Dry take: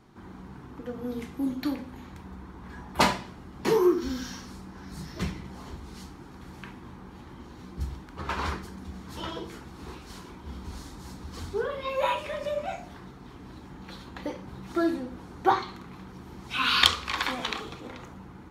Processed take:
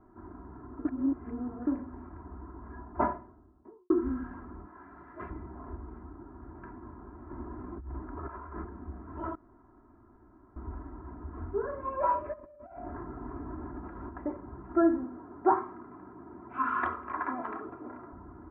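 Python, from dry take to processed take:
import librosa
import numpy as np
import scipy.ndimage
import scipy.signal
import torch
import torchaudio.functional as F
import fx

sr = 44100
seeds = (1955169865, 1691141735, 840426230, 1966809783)

y = fx.studio_fade_out(x, sr, start_s=2.51, length_s=1.39)
y = fx.tilt_eq(y, sr, slope=4.0, at=(4.66, 5.3))
y = fx.air_absorb(y, sr, metres=330.0, at=(5.97, 6.55))
y = fx.over_compress(y, sr, threshold_db=-39.0, ratio=-1.0, at=(7.29, 8.63), fade=0.02)
y = fx.over_compress(y, sr, threshold_db=-45.0, ratio=-1.0, at=(12.32, 14.08), fade=0.02)
y = fx.highpass(y, sr, hz=140.0, slope=12, at=(15.04, 18.13))
y = fx.edit(y, sr, fx.reverse_span(start_s=0.85, length_s=0.82),
    fx.room_tone_fill(start_s=9.35, length_s=1.21), tone=tone)
y = scipy.signal.sosfilt(scipy.signal.butter(6, 1500.0, 'lowpass', fs=sr, output='sos'), y)
y = y + 0.89 * np.pad(y, (int(3.0 * sr / 1000.0), 0))[:len(y)]
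y = y * 10.0 ** (-3.5 / 20.0)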